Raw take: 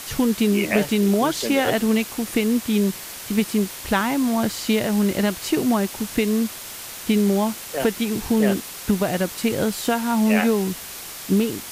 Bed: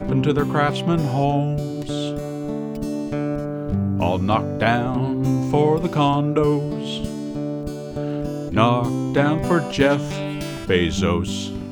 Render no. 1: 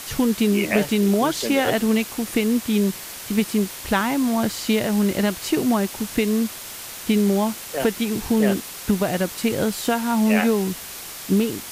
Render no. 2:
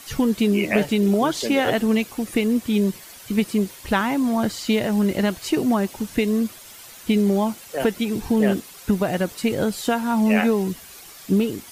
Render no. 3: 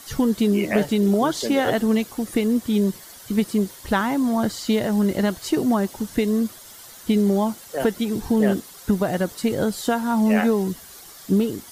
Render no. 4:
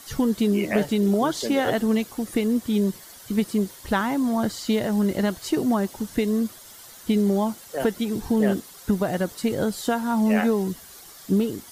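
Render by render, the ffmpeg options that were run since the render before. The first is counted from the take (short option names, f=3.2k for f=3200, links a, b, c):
-af anull
-af "afftdn=nr=10:nf=-36"
-af "equalizer=f=2.5k:t=o:w=0.41:g=-8.5"
-af "volume=-2dB"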